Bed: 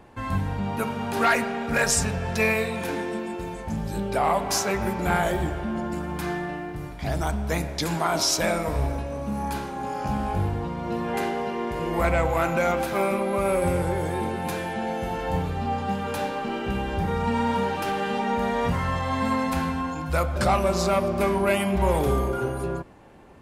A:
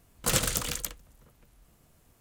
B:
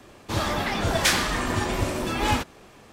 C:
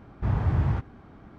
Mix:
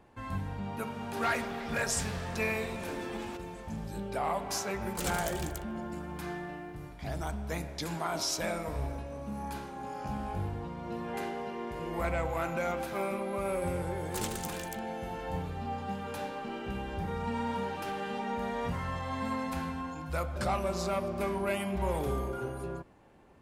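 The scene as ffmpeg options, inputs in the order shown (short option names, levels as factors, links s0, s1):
-filter_complex "[1:a]asplit=2[s0][s1];[0:a]volume=0.335[s2];[2:a]acompressor=threshold=0.02:ratio=6:attack=3.2:release=140:knee=1:detection=peak,atrim=end=2.92,asetpts=PTS-STARTPTS,volume=0.447,afade=t=in:d=0.004:c=hsin,afade=t=out:st=2.916:d=0.004:c=hsin,adelay=940[s3];[s0]atrim=end=2.2,asetpts=PTS-STARTPTS,volume=0.282,afade=t=in:d=0.004:c=hsin,afade=t=out:st=2.196:d=0.004:c=hsin,adelay=4710[s4];[s1]atrim=end=2.2,asetpts=PTS-STARTPTS,volume=0.251,afade=t=in:d=0.004:c=hsin,afade=t=out:st=2.196:d=0.004:c=hsin,adelay=13880[s5];[s2][s3][s4][s5]amix=inputs=4:normalize=0"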